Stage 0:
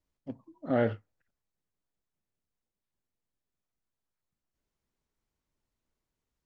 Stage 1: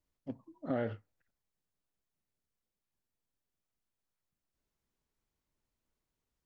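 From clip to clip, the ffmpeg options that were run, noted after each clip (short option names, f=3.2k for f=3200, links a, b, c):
-af "acompressor=threshold=-28dB:ratio=10,volume=-1.5dB"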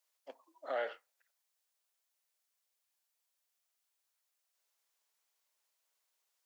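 -af "highpass=f=550:w=0.5412,highpass=f=550:w=1.3066,highshelf=f=2.5k:g=8.5,volume=2dB"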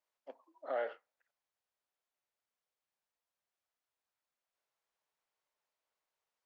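-af "lowpass=f=1.2k:p=1,volume=1.5dB"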